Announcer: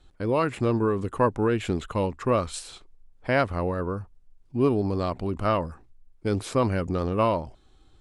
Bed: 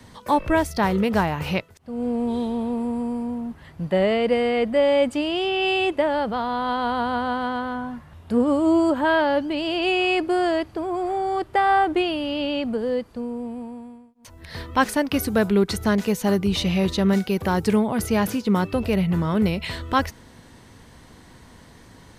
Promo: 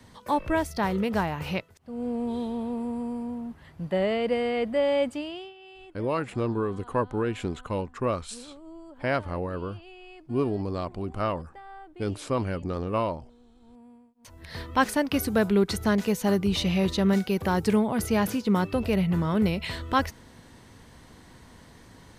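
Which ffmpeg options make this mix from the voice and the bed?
-filter_complex "[0:a]adelay=5750,volume=-4dB[a];[1:a]volume=18.5dB,afade=t=out:st=5.01:d=0.53:silence=0.0841395,afade=t=in:st=13.6:d=0.75:silence=0.0630957[b];[a][b]amix=inputs=2:normalize=0"

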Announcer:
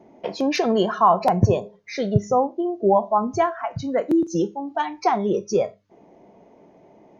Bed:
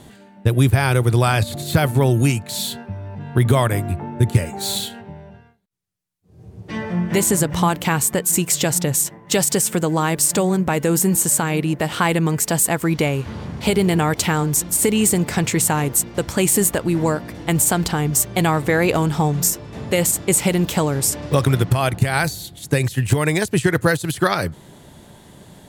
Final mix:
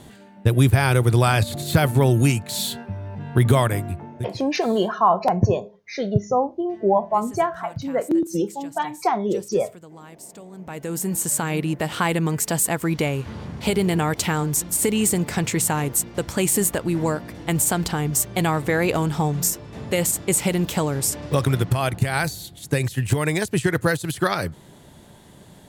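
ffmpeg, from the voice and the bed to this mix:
-filter_complex "[0:a]adelay=4000,volume=-1dB[a];[1:a]volume=20dB,afade=t=out:st=3.55:d=0.83:silence=0.0668344,afade=t=in:st=10.51:d=1.01:silence=0.0891251[b];[a][b]amix=inputs=2:normalize=0"

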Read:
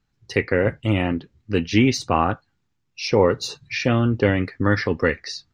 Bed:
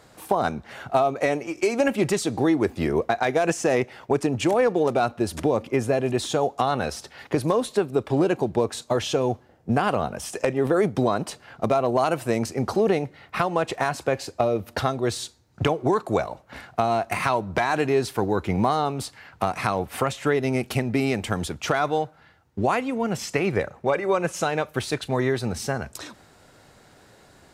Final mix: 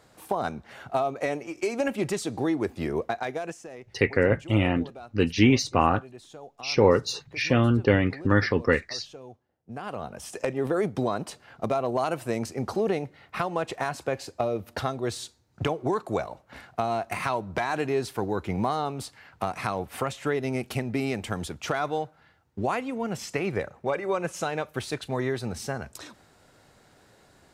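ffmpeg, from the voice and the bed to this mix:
-filter_complex "[0:a]adelay=3650,volume=-2dB[a];[1:a]volume=11dB,afade=t=out:st=3.05:d=0.63:silence=0.158489,afade=t=in:st=9.65:d=0.74:silence=0.149624[b];[a][b]amix=inputs=2:normalize=0"

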